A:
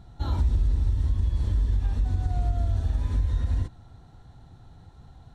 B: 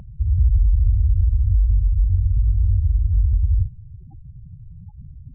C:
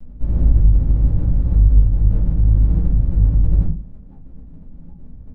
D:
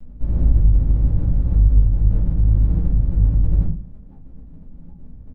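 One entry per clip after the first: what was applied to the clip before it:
spectral gate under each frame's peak -10 dB strong; peaking EQ 680 Hz +9.5 dB 2.4 oct; in parallel at -2 dB: peak limiter -25.5 dBFS, peak gain reduction 10.5 dB; on the sum: trim +4.5 dB
comb filter that takes the minimum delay 4.7 ms; simulated room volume 150 m³, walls furnished, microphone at 2.5 m; trim -6 dB
delay 125 ms -21.5 dB; trim -1.5 dB

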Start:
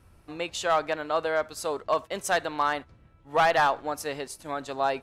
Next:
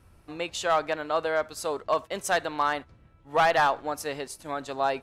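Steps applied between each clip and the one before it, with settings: no audible change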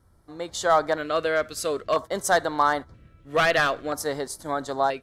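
level rider gain up to 9.5 dB; LFO notch square 0.51 Hz 870–2600 Hz; trim -4 dB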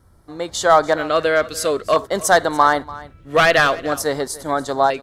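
delay 290 ms -19 dB; trim +7 dB

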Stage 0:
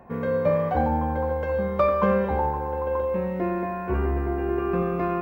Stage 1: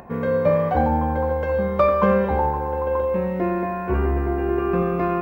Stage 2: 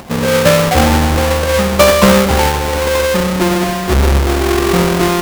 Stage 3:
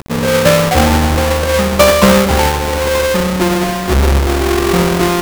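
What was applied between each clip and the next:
upward compressor, threshold -42 dBFS; trim +3.5 dB
square wave that keeps the level; trim +5 dB
bit crusher 5-bit

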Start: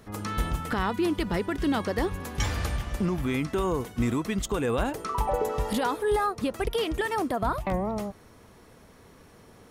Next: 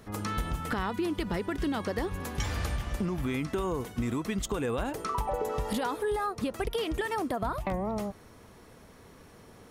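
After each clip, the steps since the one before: compression, threshold -27 dBFS, peak gain reduction 6.5 dB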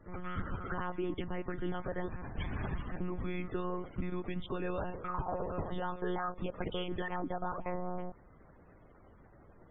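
monotone LPC vocoder at 8 kHz 180 Hz; loudest bins only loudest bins 64; trim -5 dB

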